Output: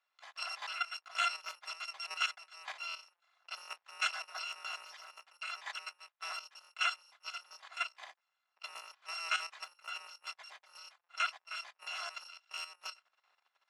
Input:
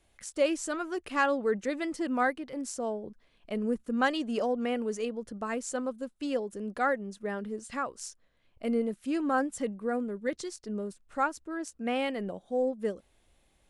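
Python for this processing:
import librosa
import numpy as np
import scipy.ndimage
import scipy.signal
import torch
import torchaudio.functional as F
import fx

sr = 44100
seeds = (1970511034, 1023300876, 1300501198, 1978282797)

y = fx.bit_reversed(x, sr, seeds[0], block=256)
y = scipy.signal.sosfilt(scipy.signal.butter(4, 850.0, 'highpass', fs=sr, output='sos'), y)
y = fx.spacing_loss(y, sr, db_at_10k=39)
y = fx.level_steps(y, sr, step_db=11)
y = y * 10.0 ** (14.0 / 20.0)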